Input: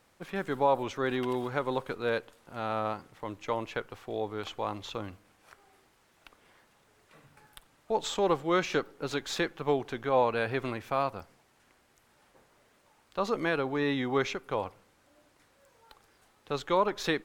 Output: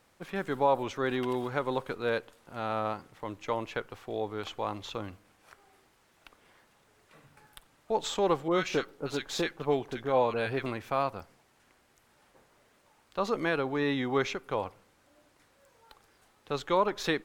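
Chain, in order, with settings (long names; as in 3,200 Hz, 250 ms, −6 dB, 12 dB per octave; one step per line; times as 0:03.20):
0:08.48–0:10.66: multiband delay without the direct sound lows, highs 30 ms, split 1,300 Hz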